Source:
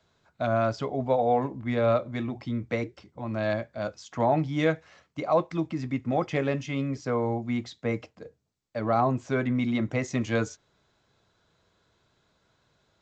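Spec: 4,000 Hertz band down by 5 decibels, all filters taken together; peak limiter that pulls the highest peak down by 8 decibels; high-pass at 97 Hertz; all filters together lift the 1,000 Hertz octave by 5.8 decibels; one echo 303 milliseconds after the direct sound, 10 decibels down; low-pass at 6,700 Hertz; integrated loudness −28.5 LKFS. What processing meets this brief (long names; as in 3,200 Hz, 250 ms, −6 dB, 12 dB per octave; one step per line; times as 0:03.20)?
high-pass filter 97 Hz
low-pass filter 6,700 Hz
parametric band 1,000 Hz +8.5 dB
parametric band 4,000 Hz −6.5 dB
brickwall limiter −16 dBFS
single-tap delay 303 ms −10 dB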